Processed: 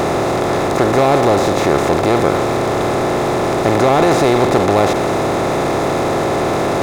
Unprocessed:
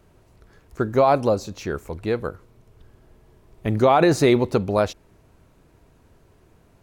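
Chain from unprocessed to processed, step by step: spectral levelling over time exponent 0.2; power-law waveshaper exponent 0.7; trim -5 dB

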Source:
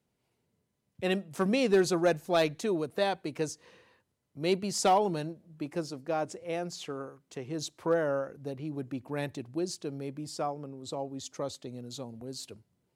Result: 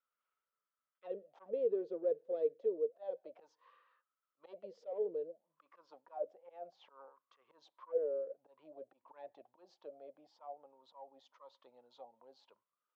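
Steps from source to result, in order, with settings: saturation -20 dBFS, distortion -17 dB; slow attack 166 ms; auto-wah 450–1300 Hz, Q 14, down, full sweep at -29.5 dBFS; cabinet simulation 110–5400 Hz, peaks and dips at 140 Hz -8 dB, 540 Hz +9 dB, 810 Hz -5 dB, 3.3 kHz +7 dB; tape noise reduction on one side only encoder only; trim +1.5 dB

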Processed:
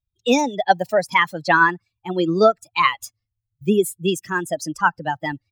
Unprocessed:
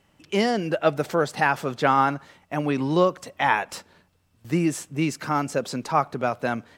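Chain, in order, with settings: expander on every frequency bin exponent 2; tape speed +23%; wow and flutter 24 cents; trim +8 dB

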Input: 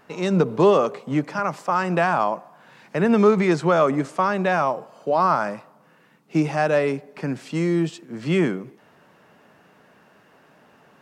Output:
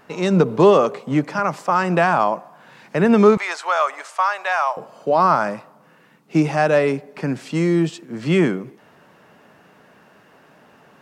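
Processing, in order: 3.37–4.77 s: high-pass 750 Hz 24 dB/octave; trim +3.5 dB

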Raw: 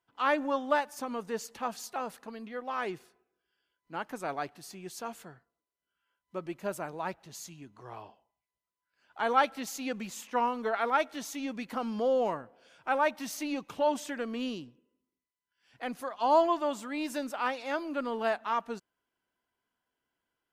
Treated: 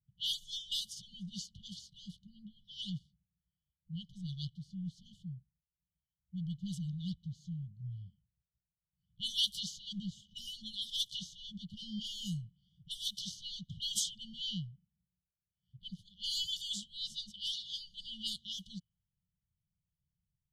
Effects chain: level-controlled noise filter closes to 560 Hz, open at -24.5 dBFS; brick-wall FIR band-stop 190–2900 Hz; trim +12.5 dB

